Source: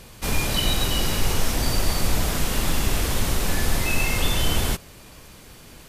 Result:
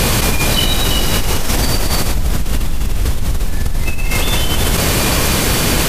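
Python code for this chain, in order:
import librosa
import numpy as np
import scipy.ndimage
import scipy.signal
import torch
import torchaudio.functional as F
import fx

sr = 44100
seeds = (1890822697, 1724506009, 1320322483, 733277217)

y = fx.low_shelf(x, sr, hz=170.0, db=11.5, at=(2.15, 4.11))
y = fx.env_flatten(y, sr, amount_pct=100)
y = y * librosa.db_to_amplitude(-8.5)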